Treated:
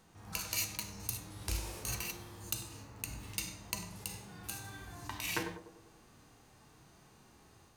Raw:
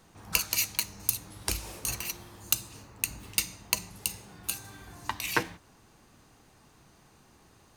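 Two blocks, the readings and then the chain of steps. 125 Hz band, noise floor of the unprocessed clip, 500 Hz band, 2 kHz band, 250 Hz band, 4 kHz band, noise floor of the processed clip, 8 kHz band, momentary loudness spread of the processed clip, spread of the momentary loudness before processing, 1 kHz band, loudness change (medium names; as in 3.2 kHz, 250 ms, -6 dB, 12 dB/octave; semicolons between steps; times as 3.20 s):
-1.0 dB, -60 dBFS, -5.0 dB, -8.0 dB, -3.0 dB, -8.0 dB, -62 dBFS, -8.5 dB, 11 LU, 12 LU, -7.5 dB, -8.5 dB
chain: band-passed feedback delay 98 ms, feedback 61%, band-pass 470 Hz, level -12 dB; harmonic-percussive split percussive -14 dB; level rider gain up to 3 dB; trim -1 dB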